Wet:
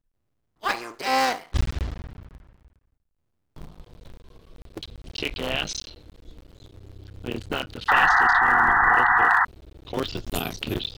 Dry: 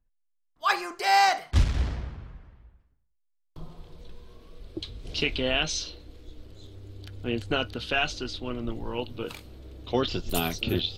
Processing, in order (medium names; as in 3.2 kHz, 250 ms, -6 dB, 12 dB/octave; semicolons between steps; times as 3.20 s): cycle switcher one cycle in 3, muted; painted sound noise, 7.88–9.45 s, 700–2000 Hz -18 dBFS